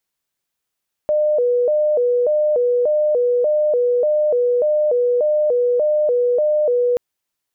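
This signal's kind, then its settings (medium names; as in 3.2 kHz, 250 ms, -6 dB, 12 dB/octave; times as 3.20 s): siren hi-lo 488–604 Hz 1.7 per s sine -13.5 dBFS 5.88 s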